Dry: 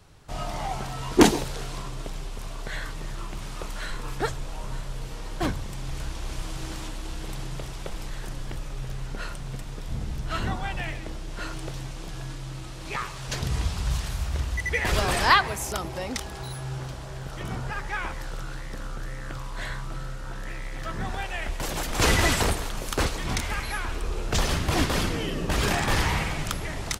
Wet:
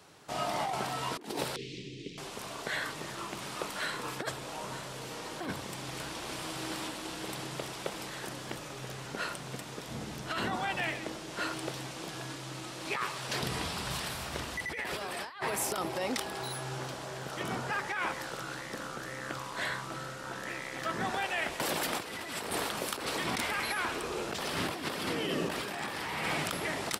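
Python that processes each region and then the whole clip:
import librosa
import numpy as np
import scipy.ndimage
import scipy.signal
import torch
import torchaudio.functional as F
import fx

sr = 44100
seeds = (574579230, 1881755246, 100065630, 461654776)

y = fx.chain(x, sr, fx.cheby2_bandstop(low_hz=630.0, high_hz=1500.0, order=4, stop_db=40),
    fx.air_absorb(metres=160.0), at=(1.56, 2.18))
y = scipy.signal.sosfilt(scipy.signal.butter(2, 230.0, 'highpass', fs=sr, output='sos'), y)
y = fx.dynamic_eq(y, sr, hz=6500.0, q=3.6, threshold_db=-53.0, ratio=4.0, max_db=-7)
y = fx.over_compress(y, sr, threshold_db=-33.0, ratio=-1.0)
y = F.gain(torch.from_numpy(y), -1.5).numpy()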